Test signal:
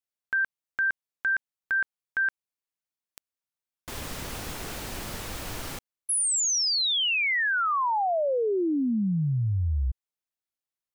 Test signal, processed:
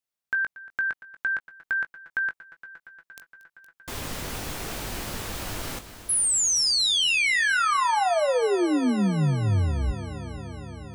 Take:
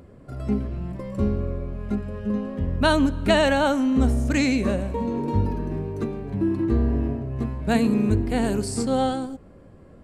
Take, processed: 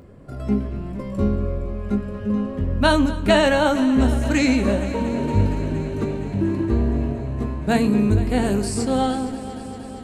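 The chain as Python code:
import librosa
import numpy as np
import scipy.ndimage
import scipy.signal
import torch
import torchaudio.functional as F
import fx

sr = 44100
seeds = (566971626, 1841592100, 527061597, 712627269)

y = fx.doubler(x, sr, ms=20.0, db=-9.5)
y = fx.echo_heads(y, sr, ms=233, heads='first and second', feedback_pct=75, wet_db=-18.0)
y = y * librosa.db_to_amplitude(2.0)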